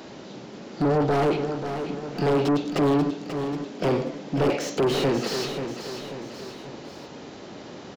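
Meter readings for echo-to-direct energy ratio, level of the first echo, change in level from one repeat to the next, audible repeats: -7.0 dB, -8.5 dB, -5.5 dB, 3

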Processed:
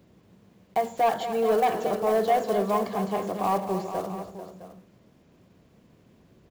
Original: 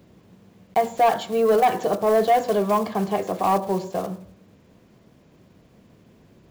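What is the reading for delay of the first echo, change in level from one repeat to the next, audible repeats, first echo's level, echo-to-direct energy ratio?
0.235 s, no steady repeat, 3, -11.0 dB, -7.0 dB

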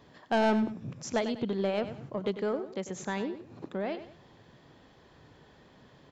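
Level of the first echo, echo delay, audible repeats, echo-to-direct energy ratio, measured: -12.0 dB, 97 ms, 2, -11.5 dB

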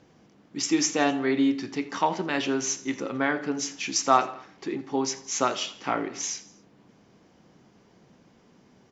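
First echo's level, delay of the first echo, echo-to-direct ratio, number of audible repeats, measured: -20.0 dB, 83 ms, -18.5 dB, 3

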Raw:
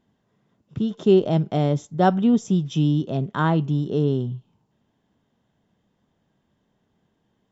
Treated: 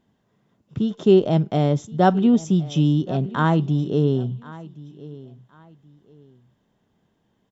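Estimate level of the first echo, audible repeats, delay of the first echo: -19.5 dB, 2, 1.073 s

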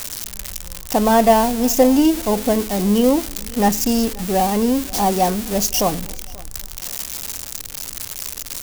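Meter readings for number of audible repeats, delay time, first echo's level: 2, 0.533 s, -23.0 dB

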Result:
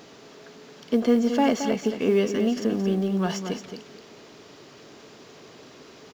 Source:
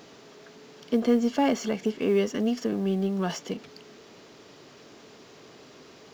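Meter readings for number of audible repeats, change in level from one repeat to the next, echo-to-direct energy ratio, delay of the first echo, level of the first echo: 2, -14.5 dB, -8.5 dB, 0.222 s, -8.5 dB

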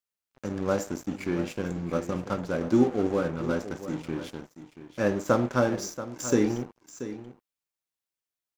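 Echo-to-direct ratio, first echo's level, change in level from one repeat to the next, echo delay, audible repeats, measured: -13.0 dB, -13.0 dB, no steady repeat, 0.682 s, 1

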